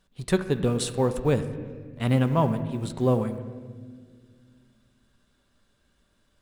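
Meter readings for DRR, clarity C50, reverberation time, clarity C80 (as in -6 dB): 8.5 dB, 11.5 dB, 1.8 s, 12.5 dB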